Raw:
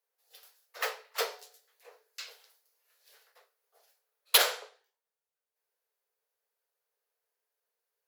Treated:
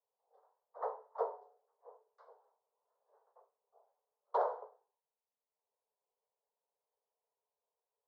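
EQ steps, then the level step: elliptic band-pass 390–1000 Hz, stop band 50 dB; distance through air 160 m; tilt EQ +4 dB/octave; +4.0 dB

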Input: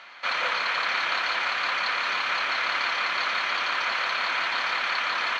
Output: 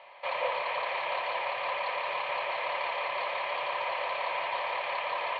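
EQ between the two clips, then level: cabinet simulation 130–2900 Hz, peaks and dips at 130 Hz +10 dB, 560 Hz +10 dB, 970 Hz +8 dB, 1.5 kHz +7 dB; static phaser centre 600 Hz, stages 4; -2.0 dB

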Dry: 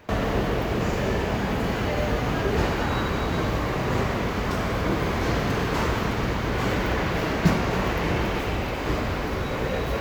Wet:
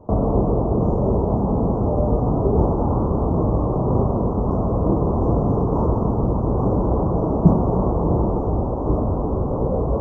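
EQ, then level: inverse Chebyshev band-stop 1.6–4.3 kHz, stop band 40 dB; distance through air 69 m; tape spacing loss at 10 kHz 38 dB; +7.5 dB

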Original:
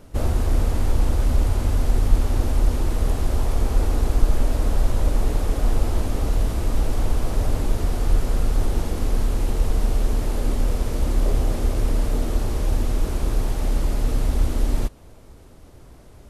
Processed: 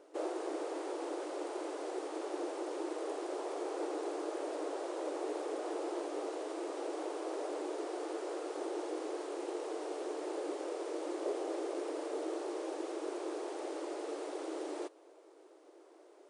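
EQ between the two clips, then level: brick-wall FIR band-pass 300–10000 Hz; tilt shelf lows +6 dB, about 870 Hz; -7.5 dB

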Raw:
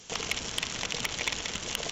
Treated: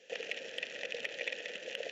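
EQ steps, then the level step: vowel filter e; high-pass 160 Hz 12 dB/octave; +6.0 dB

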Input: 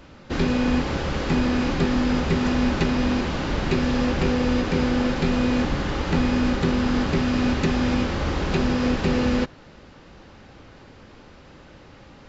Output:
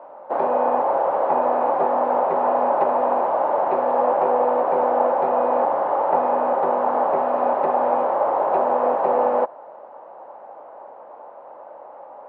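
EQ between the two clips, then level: resonant high-pass 610 Hz, resonance Q 3.8; resonant low-pass 920 Hz, resonance Q 3.4; distance through air 79 m; 0.0 dB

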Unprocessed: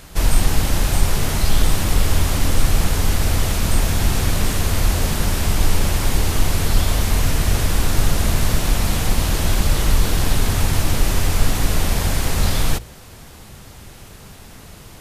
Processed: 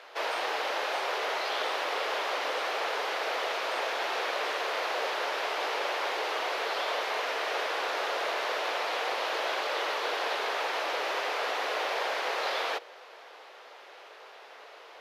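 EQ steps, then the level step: steep high-pass 450 Hz 36 dB/octave; distance through air 290 m; peaking EQ 11 kHz +3 dB 1.9 oct; 0.0 dB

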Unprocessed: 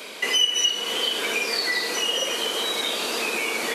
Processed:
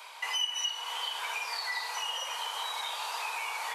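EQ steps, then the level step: ladder high-pass 830 Hz, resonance 70%; 0.0 dB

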